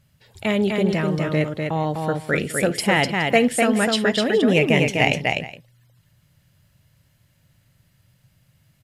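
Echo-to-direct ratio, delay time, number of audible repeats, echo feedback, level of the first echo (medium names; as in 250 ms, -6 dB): -3.0 dB, 55 ms, 3, no regular repeats, -19.5 dB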